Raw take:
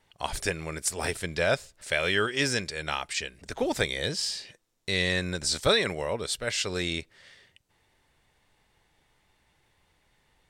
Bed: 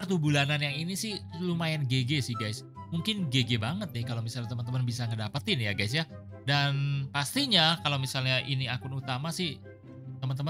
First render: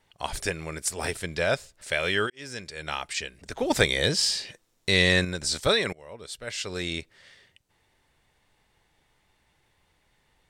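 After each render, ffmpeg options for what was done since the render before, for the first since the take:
ffmpeg -i in.wav -filter_complex "[0:a]asettb=1/sr,asplit=3[link_01][link_02][link_03];[link_01]atrim=end=3.704[link_04];[link_02]atrim=start=3.7:end=5.25,asetpts=PTS-STARTPTS,afade=type=in:duration=0.004:curve=qsin,afade=type=out:start_time=1.546:duration=0.004:curve=qsin,acontrast=54[link_05];[link_03]atrim=start=5.246[link_06];[link_04][link_05]acrossfade=duration=0.004:curve1=hsin:curve2=qsin[link_07];[link_07][link_06]acrossfade=duration=0.004:curve1=qsin:curve2=hsin,asplit=3[link_08][link_09][link_10];[link_08]atrim=end=2.3,asetpts=PTS-STARTPTS,afade=type=out:start_time=2.296:duration=0.004:curve=hsin[link_11];[link_09]atrim=start=2.3:end=5.93,asetpts=PTS-STARTPTS,afade=type=in:duration=0.71,afade=type=out:start_time=3.626:duration=0.004:curve=hsin:silence=0.0707946[link_12];[link_10]atrim=start=5.93,asetpts=PTS-STARTPTS,afade=type=in:duration=1.07:silence=0.0707946[link_13];[link_11][link_12][link_13]concat=n=3:v=0:a=1" out.wav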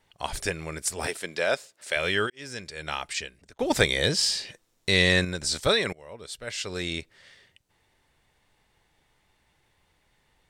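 ffmpeg -i in.wav -filter_complex "[0:a]asettb=1/sr,asplit=3[link_01][link_02][link_03];[link_01]atrim=end=1.074[link_04];[link_02]atrim=start=1.07:end=1.96,asetpts=PTS-STARTPTS,afade=type=in:duration=0.004:curve=qsin,afade=type=out:start_time=0.886:duration=0.004:curve=qsin,highpass=270[link_05];[link_03]atrim=start=1.956[link_06];[link_04][link_05]acrossfade=duration=0.004:curve1=hsin:curve2=qsin[link_07];[link_07][link_06]acrossfade=duration=0.004:curve1=qsin:curve2=hsin,asplit=2[link_08][link_09];[link_08]atrim=end=3.59,asetpts=PTS-STARTPTS,afade=type=out:start_time=3.16:duration=0.43[link_10];[link_09]atrim=start=3.59,asetpts=PTS-STARTPTS,afade=type=in:duration=0.004:curve=hsin[link_11];[link_10][link_11]concat=n=2:v=0:a=1" out.wav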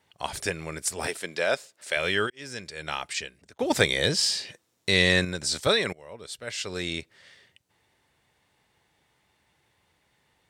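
ffmpeg -i in.wav -af "highpass=81" out.wav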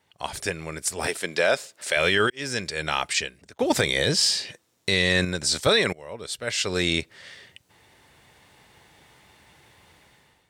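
ffmpeg -i in.wav -af "dynaudnorm=framelen=910:gausssize=3:maxgain=14dB,alimiter=limit=-9.5dB:level=0:latency=1:release=26" out.wav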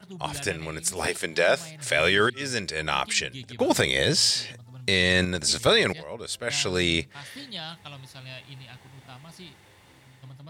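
ffmpeg -i in.wav -i bed.wav -filter_complex "[1:a]volume=-13.5dB[link_01];[0:a][link_01]amix=inputs=2:normalize=0" out.wav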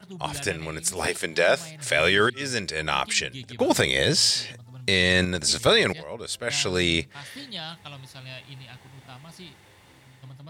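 ffmpeg -i in.wav -af "volume=1dB" out.wav

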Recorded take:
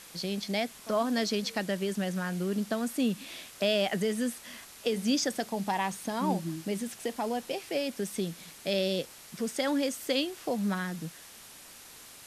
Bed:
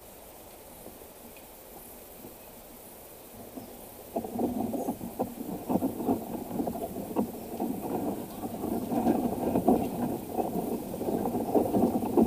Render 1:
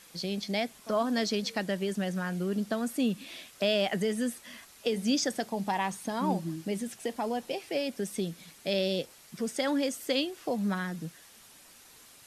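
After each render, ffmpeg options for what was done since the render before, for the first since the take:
ffmpeg -i in.wav -af "afftdn=noise_reduction=6:noise_floor=-50" out.wav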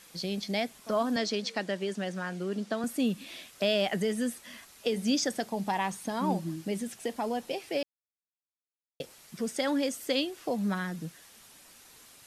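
ffmpeg -i in.wav -filter_complex "[0:a]asettb=1/sr,asplit=3[link_01][link_02][link_03];[link_01]atrim=end=1.164[link_04];[link_02]atrim=start=1.16:end=2.84,asetpts=PTS-STARTPTS,afade=type=in:duration=0.004:curve=qsin,afade=type=out:start_time=1.676:duration=0.004:curve=qsin,highpass=220,lowpass=7900[link_05];[link_03]atrim=start=2.836[link_06];[link_04][link_05]acrossfade=duration=0.004:curve1=hsin:curve2=qsin[link_07];[link_07][link_06]acrossfade=duration=0.004:curve1=qsin:curve2=hsin,asplit=3[link_08][link_09][link_10];[link_08]atrim=end=7.83,asetpts=PTS-STARTPTS,afade=type=out:start_time=7.826:duration=0.004:curve=hsin[link_11];[link_09]atrim=start=7.83:end=9,asetpts=PTS-STARTPTS,volume=0[link_12];[link_10]atrim=start=9,asetpts=PTS-STARTPTS,afade=type=in:duration=0.004:curve=hsin[link_13];[link_11][link_12][link_13]concat=n=3:v=0:a=1" out.wav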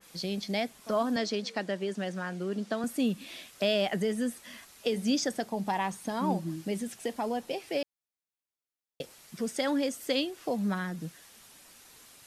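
ffmpeg -i in.wav -af "adynamicequalizer=threshold=0.00794:dfrequency=1700:dqfactor=0.7:tfrequency=1700:tqfactor=0.7:attack=5:release=100:ratio=0.375:range=2:mode=cutabove:tftype=highshelf" out.wav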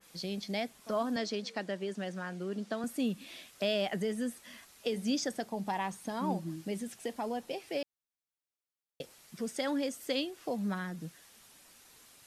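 ffmpeg -i in.wav -af "volume=-4dB" out.wav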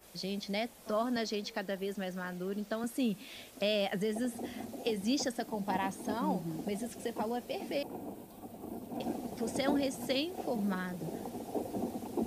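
ffmpeg -i in.wav -i bed.wav -filter_complex "[1:a]volume=-11.5dB[link_01];[0:a][link_01]amix=inputs=2:normalize=0" out.wav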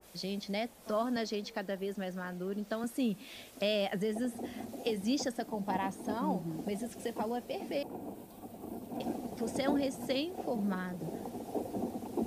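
ffmpeg -i in.wav -af "adynamicequalizer=threshold=0.00355:dfrequency=1600:dqfactor=0.7:tfrequency=1600:tqfactor=0.7:attack=5:release=100:ratio=0.375:range=2:mode=cutabove:tftype=highshelf" out.wav

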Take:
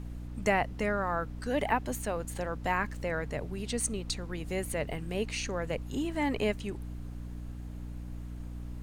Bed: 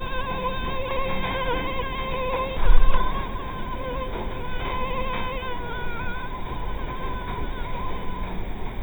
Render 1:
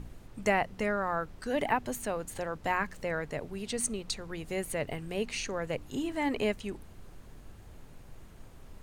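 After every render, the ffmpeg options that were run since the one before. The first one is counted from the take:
ffmpeg -i in.wav -af "bandreject=frequency=60:width_type=h:width=4,bandreject=frequency=120:width_type=h:width=4,bandreject=frequency=180:width_type=h:width=4,bandreject=frequency=240:width_type=h:width=4,bandreject=frequency=300:width_type=h:width=4" out.wav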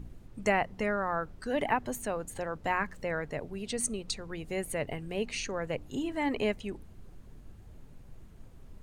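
ffmpeg -i in.wav -af "afftdn=noise_reduction=7:noise_floor=-51" out.wav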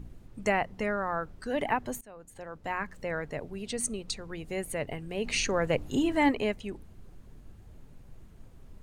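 ffmpeg -i in.wav -filter_complex "[0:a]asplit=3[link_01][link_02][link_03];[link_01]afade=type=out:start_time=5.24:duration=0.02[link_04];[link_02]acontrast=76,afade=type=in:start_time=5.24:duration=0.02,afade=type=out:start_time=6.3:duration=0.02[link_05];[link_03]afade=type=in:start_time=6.3:duration=0.02[link_06];[link_04][link_05][link_06]amix=inputs=3:normalize=0,asplit=2[link_07][link_08];[link_07]atrim=end=2.01,asetpts=PTS-STARTPTS,afade=type=out:start_time=2.006:duration=0.004:curve=hsin:silence=0.0841395[link_09];[link_08]atrim=start=2.01,asetpts=PTS-STARTPTS,afade=type=in:duration=1.13:silence=0.0841395[link_10];[link_09][link_10]concat=n=2:v=0:a=1" out.wav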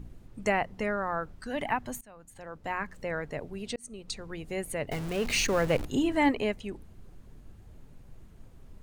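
ffmpeg -i in.wav -filter_complex "[0:a]asettb=1/sr,asplit=3[link_01][link_02][link_03];[link_01]atrim=end=1.344[link_04];[link_02]atrim=start=1.34:end=2.44,asetpts=PTS-STARTPTS,afade=type=in:duration=0.004:curve=qsin,afade=type=out:start_time=1.096:duration=0.004:curve=qsin,equalizer=frequency=430:width=1.7:gain=-7[link_05];[link_03]atrim=start=2.436[link_06];[link_04][link_05]acrossfade=duration=0.004:curve1=hsin:curve2=qsin[link_07];[link_07][link_06]acrossfade=duration=0.004:curve1=qsin:curve2=hsin,asettb=1/sr,asplit=3[link_08][link_09][link_10];[link_08]atrim=end=4.914[link_11];[link_09]atrim=start=4.91:end=5.86,asetpts=PTS-STARTPTS,afade=type=in:duration=0.004:curve=qsin,afade=type=out:start_time=0.946:duration=0.004:curve=qsin,aeval=exprs='val(0)+0.5*0.0224*sgn(val(0))':channel_layout=same[link_12];[link_10]atrim=start=5.856[link_13];[link_11][link_12]acrossfade=duration=0.004:curve1=hsin:curve2=qsin[link_14];[link_14][link_13]acrossfade=duration=0.004:curve1=qsin:curve2=hsin,asplit=2[link_15][link_16];[link_15]atrim=end=3.76,asetpts=PTS-STARTPTS,afade=type=out:start_time=3.756:duration=0.004:curve=hsin[link_17];[link_16]atrim=start=3.76,asetpts=PTS-STARTPTS,afade=type=in:duration=0.45[link_18];[link_17][link_18]concat=n=2:v=0:a=1" out.wav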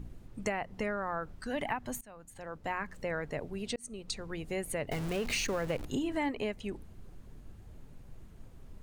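ffmpeg -i in.wav -af "acompressor=threshold=-30dB:ratio=6" out.wav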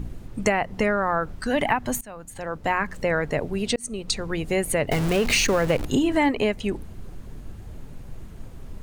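ffmpeg -i in.wav -af "volume=12dB" out.wav

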